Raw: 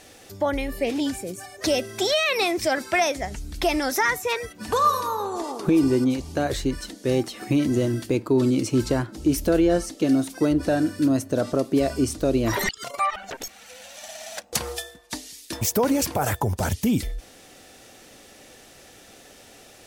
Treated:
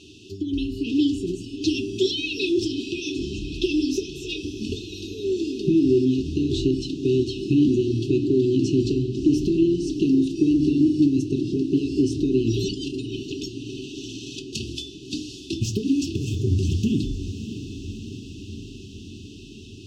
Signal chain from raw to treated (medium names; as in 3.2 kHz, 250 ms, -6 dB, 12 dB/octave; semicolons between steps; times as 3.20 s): high-pass 53 Hz; hum notches 50/100/150/200/250/300/350 Hz; in parallel at +2 dB: peak limiter -17 dBFS, peak gain reduction 7 dB; on the sum: compression, threshold -17 dBFS, peak gain reduction 6.5 dB; brick-wall FIR band-stop 430–2500 Hz; distance through air 160 m; echo that smears into a reverb 647 ms, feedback 68%, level -11.5 dB; on a send at -6 dB: reverberation, pre-delay 3 ms